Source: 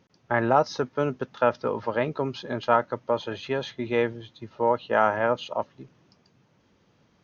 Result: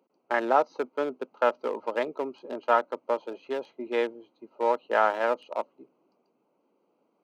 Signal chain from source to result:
adaptive Wiener filter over 25 samples
high-pass filter 270 Hz 24 dB per octave
low-shelf EQ 440 Hz −4 dB

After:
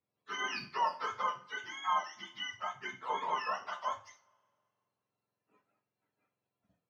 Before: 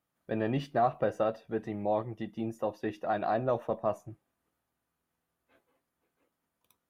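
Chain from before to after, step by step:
frequency axis turned over on the octave scale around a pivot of 820 Hz
coupled-rooms reverb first 0.34 s, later 2.1 s, from −28 dB, DRR 4 dB
mid-hump overdrive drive 9 dB, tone 3,000 Hz, clips at −7 dBFS
level −6.5 dB

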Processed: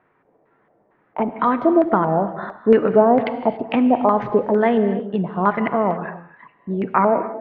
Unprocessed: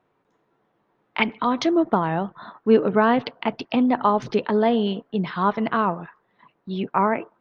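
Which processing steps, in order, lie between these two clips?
in parallel at −1 dB: downward compressor, threshold −26 dBFS, peak gain reduction 14.5 dB
on the sum: auto-filter low-pass square 2.2 Hz 650–1,900 Hz
reverb whose tail is shaped and stops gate 310 ms flat, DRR 10 dB
level −1 dB

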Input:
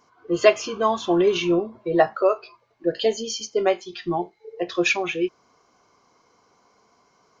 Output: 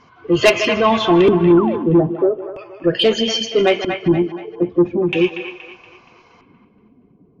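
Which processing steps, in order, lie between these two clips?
spectral magnitudes quantised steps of 15 dB
low-shelf EQ 120 Hz −4 dB
feedback echo with a high-pass in the loop 155 ms, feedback 33%, high-pass 220 Hz, level −16 dB
auto-filter low-pass square 0.39 Hz 290–2,700 Hz
bass and treble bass +12 dB, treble +8 dB
soft clipping −11 dBFS, distortion −13 dB
on a send: delay with a band-pass on its return 236 ms, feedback 40%, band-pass 1,400 Hz, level −6.5 dB
0:01.57–0:01.87: on the sum: sound drawn into the spectrogram fall 210–1,500 Hz −32 dBFS
0:02.24–0:02.98: Butterworth band-reject 4,000 Hz, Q 4.9
in parallel at −0.5 dB: brickwall limiter −19 dBFS, peak gain reduction 8.5 dB
on the sum: level +3 dB

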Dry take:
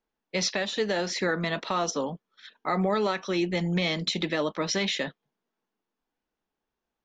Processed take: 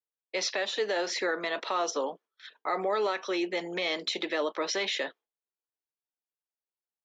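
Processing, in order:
noise gate with hold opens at −43 dBFS
high-pass filter 340 Hz 24 dB per octave
high-shelf EQ 6,100 Hz −6 dB
in parallel at +2.5 dB: brickwall limiter −24.5 dBFS, peak gain reduction 9 dB
on the sum: level −6 dB

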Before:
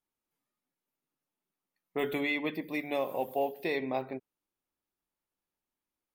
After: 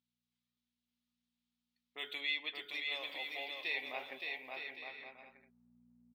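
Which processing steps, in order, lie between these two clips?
hum with harmonics 60 Hz, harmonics 4, −62 dBFS −1 dB per octave
band-pass filter sweep 3,700 Hz → 330 Hz, 0:03.52–0:05.76
bouncing-ball delay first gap 570 ms, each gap 0.6×, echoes 5
level +4.5 dB

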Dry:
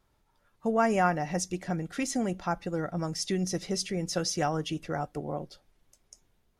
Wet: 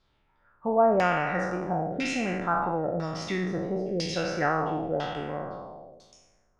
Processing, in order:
peak hold with a decay on every bin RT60 1.54 s
auto-filter low-pass saw down 1 Hz 510–4,500 Hz
high-shelf EQ 7,700 Hz +5.5 dB
level −2.5 dB

